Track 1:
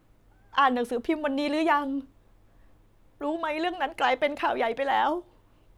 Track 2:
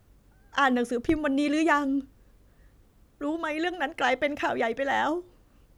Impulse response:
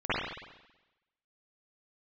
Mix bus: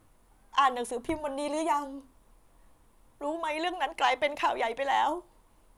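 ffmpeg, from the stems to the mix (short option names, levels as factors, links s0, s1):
-filter_complex "[0:a]lowpass=8200,volume=0.794[s0];[1:a]equalizer=f=9800:t=o:w=0.66:g=13,volume=-1,volume=0.501[s1];[s0][s1]amix=inputs=2:normalize=0,equalizer=f=1000:t=o:w=0.52:g=5,bandreject=f=50:t=h:w=6,bandreject=f=100:t=h:w=6,bandreject=f=150:t=h:w=6,bandreject=f=200:t=h:w=6,bandreject=f=250:t=h:w=6"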